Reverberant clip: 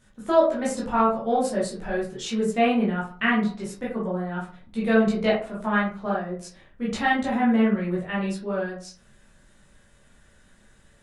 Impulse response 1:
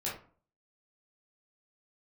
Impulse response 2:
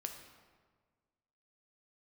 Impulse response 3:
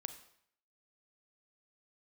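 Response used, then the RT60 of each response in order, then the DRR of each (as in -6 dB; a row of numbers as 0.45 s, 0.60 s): 1; 0.45 s, 1.6 s, 0.65 s; -7.0 dB, 4.0 dB, 9.5 dB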